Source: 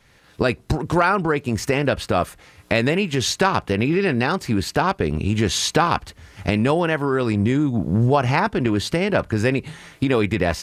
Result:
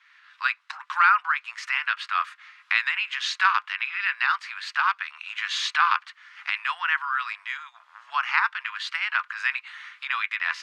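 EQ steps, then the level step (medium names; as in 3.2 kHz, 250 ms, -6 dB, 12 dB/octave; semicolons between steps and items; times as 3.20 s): steep high-pass 1.1 kHz 48 dB/octave; low-pass 2.7 kHz 12 dB/octave; +3.5 dB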